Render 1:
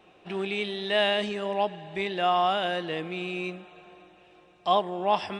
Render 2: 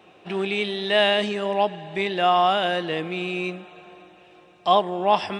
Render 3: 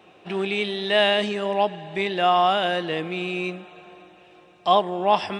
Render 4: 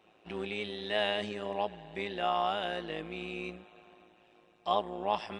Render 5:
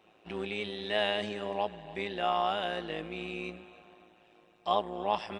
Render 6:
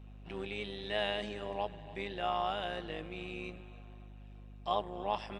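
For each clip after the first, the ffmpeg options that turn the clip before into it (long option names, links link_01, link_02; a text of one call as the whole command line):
ffmpeg -i in.wav -af "highpass=75,volume=5dB" out.wav
ffmpeg -i in.wav -af anull out.wav
ffmpeg -i in.wav -af "tremolo=f=110:d=0.71,volume=-8.5dB" out.wav
ffmpeg -i in.wav -af "aecho=1:1:289:0.112,volume=1dB" out.wav
ffmpeg -i in.wav -af "aeval=exprs='val(0)+0.00562*(sin(2*PI*50*n/s)+sin(2*PI*2*50*n/s)/2+sin(2*PI*3*50*n/s)/3+sin(2*PI*4*50*n/s)/4+sin(2*PI*5*50*n/s)/5)':channel_layout=same,volume=-4.5dB" out.wav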